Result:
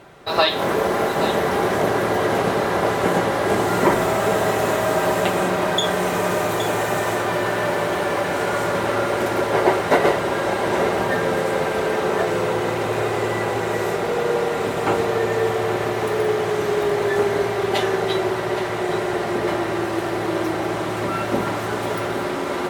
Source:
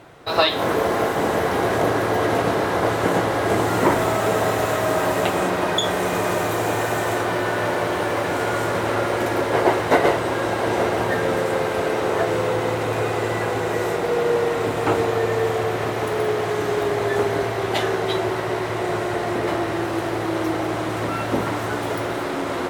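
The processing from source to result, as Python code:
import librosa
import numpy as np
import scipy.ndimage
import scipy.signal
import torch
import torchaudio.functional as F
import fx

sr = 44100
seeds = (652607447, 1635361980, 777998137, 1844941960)

y = x + 0.34 * np.pad(x, (int(5.1 * sr / 1000.0), 0))[:len(x)]
y = y + 10.0 ** (-11.0 / 20.0) * np.pad(y, (int(818 * sr / 1000.0), 0))[:len(y)]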